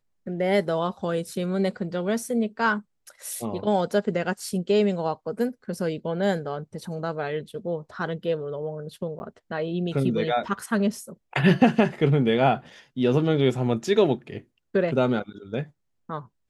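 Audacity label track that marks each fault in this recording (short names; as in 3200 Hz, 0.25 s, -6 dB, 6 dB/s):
9.190000	9.200000	gap 10 ms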